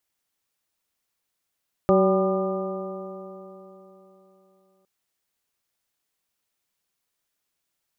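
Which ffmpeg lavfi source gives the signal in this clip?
ffmpeg -f lavfi -i "aevalsrc='0.1*pow(10,-3*t/3.57)*sin(2*PI*188.38*t)+0.126*pow(10,-3*t/3.57)*sin(2*PI*379*t)+0.126*pow(10,-3*t/3.57)*sin(2*PI*574.06*t)+0.0473*pow(10,-3*t/3.57)*sin(2*PI*775.69*t)+0.0168*pow(10,-3*t/3.57)*sin(2*PI*985.88*t)+0.0562*pow(10,-3*t/3.57)*sin(2*PI*1206.49*t)':duration=2.96:sample_rate=44100" out.wav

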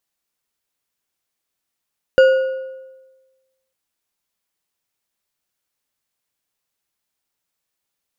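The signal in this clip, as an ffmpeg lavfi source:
ffmpeg -f lavfi -i "aevalsrc='0.531*pow(10,-3*t/1.26)*sin(2*PI*526*t)+0.168*pow(10,-3*t/0.929)*sin(2*PI*1450.2*t)+0.0531*pow(10,-3*t/0.76)*sin(2*PI*2842.5*t)+0.0168*pow(10,-3*t/0.653)*sin(2*PI*4698.8*t)+0.00531*pow(10,-3*t/0.579)*sin(2*PI*7016.8*t)':duration=1.55:sample_rate=44100" out.wav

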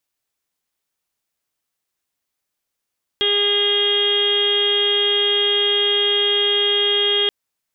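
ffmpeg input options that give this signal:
ffmpeg -f lavfi -i "aevalsrc='0.0841*sin(2*PI*408*t)+0.0158*sin(2*PI*816*t)+0.0158*sin(2*PI*1224*t)+0.0237*sin(2*PI*1632*t)+0.0299*sin(2*PI*2040*t)+0.0126*sin(2*PI*2448*t)+0.0447*sin(2*PI*2856*t)+0.15*sin(2*PI*3264*t)+0.0299*sin(2*PI*3672*t)':duration=4.08:sample_rate=44100" out.wav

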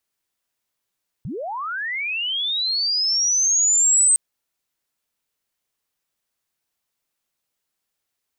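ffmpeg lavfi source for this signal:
ffmpeg -f lavfi -i "aevalsrc='pow(10,(-27+15*t/2.91)/20)*sin(2*PI*(100*t+8200*t*t/(2*2.91)))':duration=2.91:sample_rate=44100" out.wav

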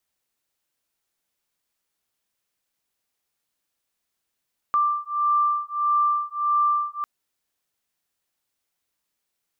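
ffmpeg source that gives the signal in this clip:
ffmpeg -f lavfi -i "aevalsrc='0.075*(sin(2*PI*1180*t)+sin(2*PI*1181.6*t))':duration=2.3:sample_rate=44100" out.wav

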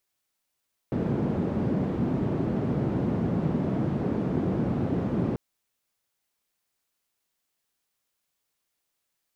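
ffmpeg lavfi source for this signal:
ffmpeg -f lavfi -i "anoisesrc=color=white:duration=4.44:sample_rate=44100:seed=1,highpass=frequency=150,lowpass=frequency=200,volume=2.6dB" out.wav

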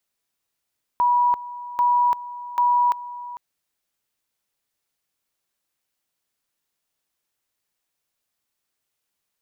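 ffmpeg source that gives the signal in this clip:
ffmpeg -f lavfi -i "aevalsrc='pow(10,(-15-16.5*gte(mod(t,0.79),0.34))/20)*sin(2*PI*972*t)':duration=2.37:sample_rate=44100" out.wav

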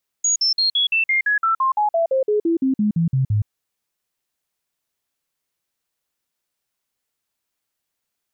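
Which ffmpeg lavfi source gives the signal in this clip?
ffmpeg -f lavfi -i "aevalsrc='0.178*clip(min(mod(t,0.17),0.12-mod(t,0.17))/0.005,0,1)*sin(2*PI*6720*pow(2,-floor(t/0.17)/3)*mod(t,0.17))':duration=3.23:sample_rate=44100" out.wav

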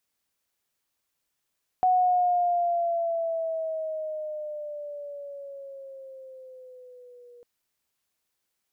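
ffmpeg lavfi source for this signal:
ffmpeg -f lavfi -i "aevalsrc='pow(10,(-17.5-30*t/5.6)/20)*sin(2*PI*740*5.6/(-7.5*log(2)/12)*(exp(-7.5*log(2)/12*t/5.6)-1))':duration=5.6:sample_rate=44100" out.wav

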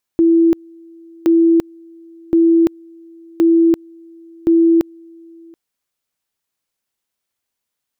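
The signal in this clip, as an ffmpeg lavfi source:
ffmpeg -f lavfi -i "aevalsrc='pow(10,(-8-29.5*gte(mod(t,1.07),0.34))/20)*sin(2*PI*332*t)':duration=5.35:sample_rate=44100" out.wav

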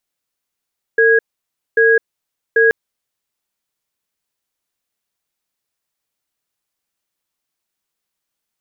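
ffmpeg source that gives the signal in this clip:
ffmpeg -f lavfi -i "aevalsrc='0.282*(sin(2*PI*453*t)+sin(2*PI*1650*t))*clip(min(mod(t,0.79),0.21-mod(t,0.79))/0.005,0,1)':duration=1.73:sample_rate=44100" out.wav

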